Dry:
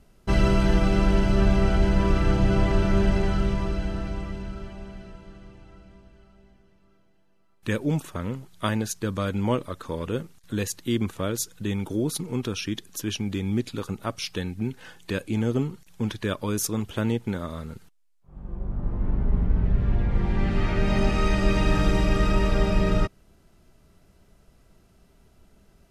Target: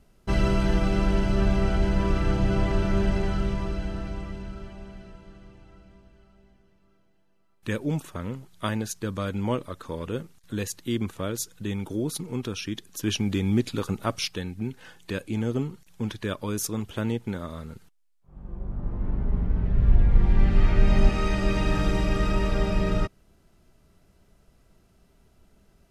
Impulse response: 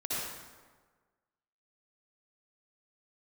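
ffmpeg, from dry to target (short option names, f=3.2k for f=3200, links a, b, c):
-filter_complex "[0:a]asettb=1/sr,asplit=3[a][b][c];[a]atrim=end=13.034[d];[b]atrim=start=13.03:end=14.28,asetpts=PTS-STARTPTS,afade=t=in:d=0.004:c=qsin,afade=t=out:st=1.246:d=0.004:c=qsin,acontrast=34[e];[c]atrim=start=14.276[f];[d][e]acrossfade=d=0.004:c1=hsin:c2=qsin[g];[g][f]acrossfade=d=0.004:c1=qsin:c2=hsin,asettb=1/sr,asplit=3[h][i][j];[h]atrim=end=19.764[k];[i]atrim=start=19.76:end=21.09,asetpts=PTS-STARTPTS,afade=t=in:d=0.004:c=qsin,afade=t=out:st=1.326:d=0.004:c=qsin,lowshelf=f=73:g=11[l];[j]atrim=start=21.086[m];[k][l]acrossfade=d=0.004:c1=hsin:c2=qsin[n];[n][m]acrossfade=d=0.004:c1=qsin:c2=hsin,volume=-2.5dB"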